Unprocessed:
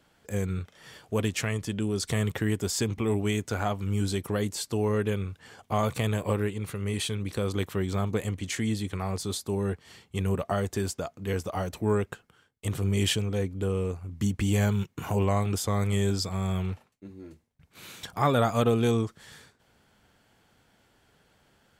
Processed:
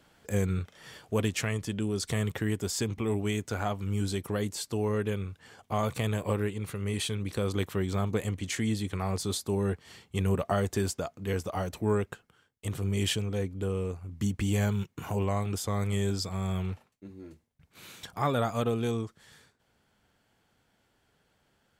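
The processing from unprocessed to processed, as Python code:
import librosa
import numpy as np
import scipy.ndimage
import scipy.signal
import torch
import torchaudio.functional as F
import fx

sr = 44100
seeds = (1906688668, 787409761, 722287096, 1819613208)

y = fx.rider(x, sr, range_db=10, speed_s=2.0)
y = F.gain(torch.from_numpy(y), -2.5).numpy()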